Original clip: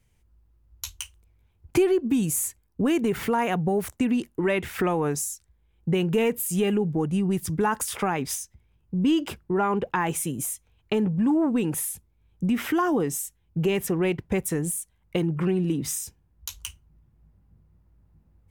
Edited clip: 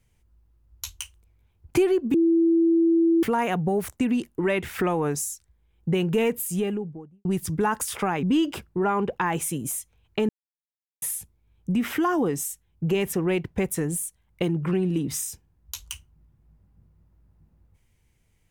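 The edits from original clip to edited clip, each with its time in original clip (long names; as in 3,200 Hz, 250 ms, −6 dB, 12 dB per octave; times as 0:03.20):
0:02.14–0:03.23: beep over 332 Hz −16 dBFS
0:06.33–0:07.25: fade out and dull
0:08.23–0:08.97: remove
0:11.03–0:11.76: silence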